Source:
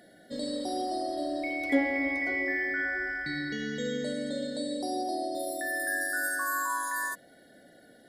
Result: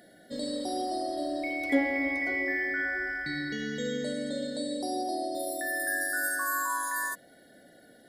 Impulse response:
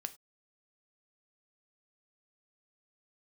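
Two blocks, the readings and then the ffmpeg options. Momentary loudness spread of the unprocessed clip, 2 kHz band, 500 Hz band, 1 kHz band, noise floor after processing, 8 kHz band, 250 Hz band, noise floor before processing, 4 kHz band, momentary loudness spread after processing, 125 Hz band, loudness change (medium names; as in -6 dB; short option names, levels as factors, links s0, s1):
6 LU, 0.0 dB, 0.0 dB, 0.0 dB, -57 dBFS, +2.0 dB, 0.0 dB, -57 dBFS, +0.5 dB, 6 LU, 0.0 dB, 0.0 dB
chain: -af "highshelf=f=11000:g=5"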